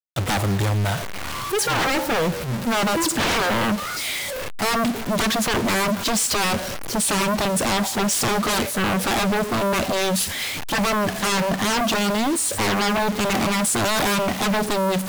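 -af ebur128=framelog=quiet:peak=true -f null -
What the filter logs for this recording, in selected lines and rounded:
Integrated loudness:
  I:         -21.3 LUFS
  Threshold: -31.3 LUFS
Loudness range:
  LRA:         1.3 LU
  Threshold: -41.3 LUFS
  LRA low:   -21.9 LUFS
  LRA high:  -20.6 LUFS
True peak:
  Peak:      -15.2 dBFS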